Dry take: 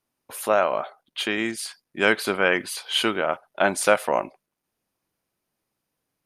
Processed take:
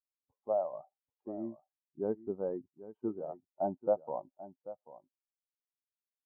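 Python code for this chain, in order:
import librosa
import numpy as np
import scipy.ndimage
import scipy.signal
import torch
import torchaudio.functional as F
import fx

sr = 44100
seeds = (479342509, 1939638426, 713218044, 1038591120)

p1 = fx.bin_expand(x, sr, power=2.0)
p2 = scipy.signal.sosfilt(scipy.signal.butter(6, 830.0, 'lowpass', fs=sr, output='sos'), p1)
p3 = p2 + fx.echo_single(p2, sr, ms=788, db=-15.5, dry=0)
y = F.gain(torch.from_numpy(p3), -7.0).numpy()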